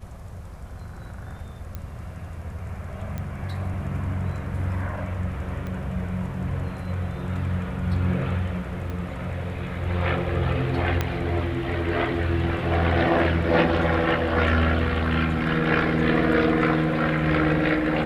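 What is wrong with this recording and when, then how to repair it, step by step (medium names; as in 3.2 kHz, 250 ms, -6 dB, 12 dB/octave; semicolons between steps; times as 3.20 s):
1.75 s: pop -20 dBFS
3.18 s: pop -19 dBFS
5.67 s: pop -22 dBFS
8.90 s: pop -22 dBFS
11.01 s: pop -9 dBFS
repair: de-click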